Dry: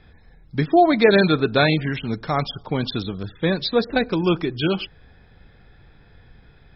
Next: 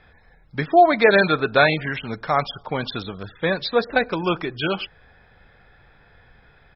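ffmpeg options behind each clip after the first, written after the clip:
-af "firequalizer=gain_entry='entry(320,0);entry(550,8);entry(1500,10);entry(3900,3)':delay=0.05:min_phase=1,volume=-5.5dB"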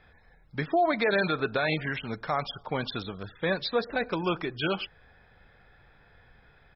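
-af "alimiter=limit=-11.5dB:level=0:latency=1:release=65,volume=-5dB"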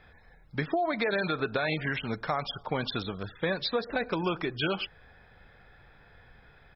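-af "acompressor=threshold=-27dB:ratio=6,volume=2dB"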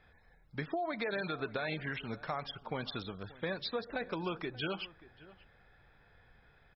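-filter_complex "[0:a]asplit=2[a][b];[b]adelay=583.1,volume=-19dB,highshelf=f=4k:g=-13.1[c];[a][c]amix=inputs=2:normalize=0,volume=-7.5dB"

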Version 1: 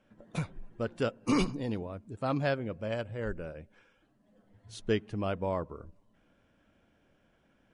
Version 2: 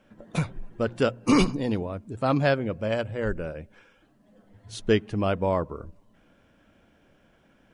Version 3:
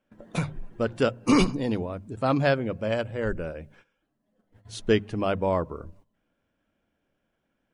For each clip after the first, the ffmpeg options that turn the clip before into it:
-af "bandreject=f=60:t=h:w=6,bandreject=f=120:t=h:w=6,volume=7.5dB"
-af "agate=range=-15dB:threshold=-52dB:ratio=16:detection=peak,bandreject=f=50:t=h:w=6,bandreject=f=100:t=h:w=6,bandreject=f=150:t=h:w=6,bandreject=f=200:t=h:w=6"

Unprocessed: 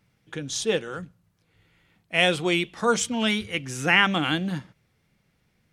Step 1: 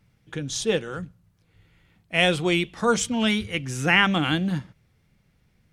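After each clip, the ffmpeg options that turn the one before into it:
-af "lowshelf=f=130:g=10"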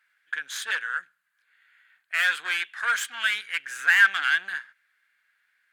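-af "aeval=exprs='(tanh(14.1*val(0)+0.65)-tanh(0.65))/14.1':c=same,highpass=f=1.6k:t=q:w=8.2,equalizer=f=5.6k:w=4.5:g=-8.5"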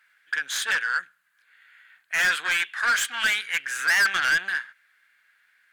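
-af "asoftclip=type=tanh:threshold=-23.5dB,volume=6.5dB"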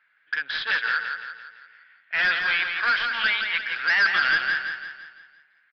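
-filter_complex "[0:a]adynamicsmooth=sensitivity=7:basefreq=2.9k,asplit=2[a][b];[b]aecho=0:1:170|340|510|680|850|1020:0.501|0.241|0.115|0.0554|0.0266|0.0128[c];[a][c]amix=inputs=2:normalize=0,aresample=11025,aresample=44100"

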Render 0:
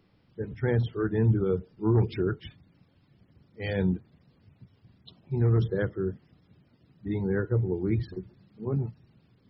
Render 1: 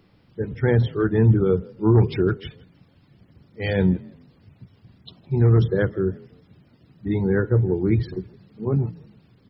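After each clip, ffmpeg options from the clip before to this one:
-filter_complex "[0:a]asplit=3[a][b][c];[b]adelay=162,afreqshift=34,volume=-24dB[d];[c]adelay=324,afreqshift=68,volume=-34.5dB[e];[a][d][e]amix=inputs=3:normalize=0,volume=7dB"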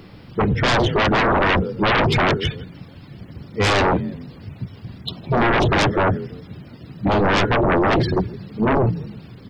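-af "aeval=exprs='0.501*sin(PI/2*8.91*val(0)/0.501)':c=same,volume=-7.5dB"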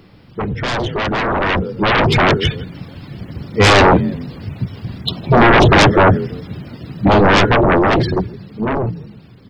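-af "dynaudnorm=f=320:g=13:m=13.5dB,volume=-3dB"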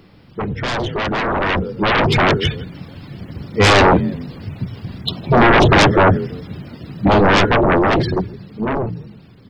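-af "bandreject=f=60:t=h:w=6,bandreject=f=120:t=h:w=6,volume=-1.5dB"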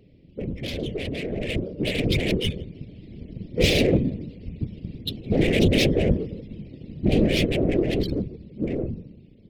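-af "asuperstop=centerf=1100:order=8:qfactor=0.65,afftfilt=real='hypot(re,im)*cos(2*PI*random(0))':imag='hypot(re,im)*sin(2*PI*random(1))':win_size=512:overlap=0.75,adynamicsmooth=sensitivity=5.5:basefreq=2.5k"

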